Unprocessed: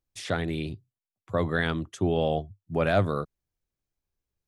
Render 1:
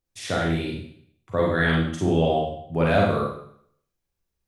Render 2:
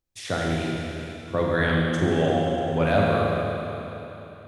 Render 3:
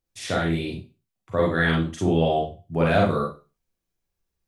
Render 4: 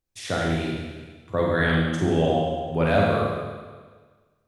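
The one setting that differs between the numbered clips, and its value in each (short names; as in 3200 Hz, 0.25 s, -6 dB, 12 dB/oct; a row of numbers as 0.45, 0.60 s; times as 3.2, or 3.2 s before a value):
Schroeder reverb, RT60: 0.64, 3.4, 0.31, 1.5 s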